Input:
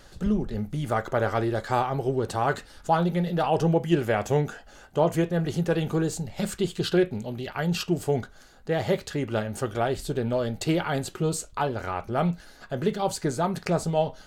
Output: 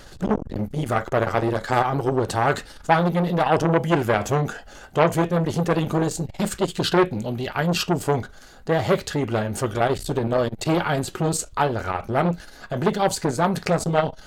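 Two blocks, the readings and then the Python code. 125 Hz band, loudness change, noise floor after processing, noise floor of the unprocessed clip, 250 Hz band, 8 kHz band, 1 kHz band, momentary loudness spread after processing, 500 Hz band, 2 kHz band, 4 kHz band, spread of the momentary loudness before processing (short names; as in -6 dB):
+3.5 dB, +4.0 dB, -45 dBFS, -51 dBFS, +3.0 dB, +5.5 dB, +5.5 dB, 7 LU, +3.5 dB, +6.0 dB, +5.0 dB, 7 LU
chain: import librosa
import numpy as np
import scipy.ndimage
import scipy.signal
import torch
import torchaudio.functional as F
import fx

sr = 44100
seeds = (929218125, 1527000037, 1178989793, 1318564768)

y = fx.transformer_sat(x, sr, knee_hz=1100.0)
y = y * 10.0 ** (7.5 / 20.0)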